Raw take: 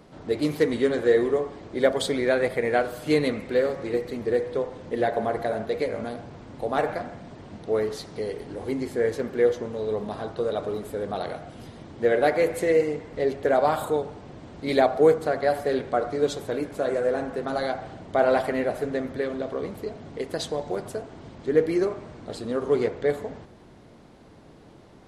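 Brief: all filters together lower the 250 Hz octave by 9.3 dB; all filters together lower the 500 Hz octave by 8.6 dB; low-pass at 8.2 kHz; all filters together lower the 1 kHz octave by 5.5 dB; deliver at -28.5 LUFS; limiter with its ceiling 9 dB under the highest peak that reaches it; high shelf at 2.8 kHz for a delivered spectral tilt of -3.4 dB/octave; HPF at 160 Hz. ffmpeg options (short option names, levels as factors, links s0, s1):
-af "highpass=160,lowpass=8200,equalizer=f=250:t=o:g=-8.5,equalizer=f=500:t=o:g=-7,equalizer=f=1000:t=o:g=-4.5,highshelf=f=2800:g=7,volume=1.88,alimiter=limit=0.178:level=0:latency=1"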